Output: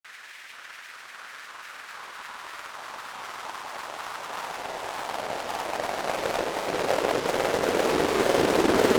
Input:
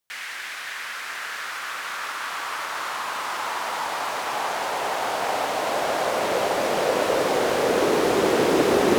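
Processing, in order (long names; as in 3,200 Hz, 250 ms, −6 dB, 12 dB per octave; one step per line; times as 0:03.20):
harmonic generator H 7 −20 dB, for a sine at −7 dBFS
granular cloud, pitch spread up and down by 3 semitones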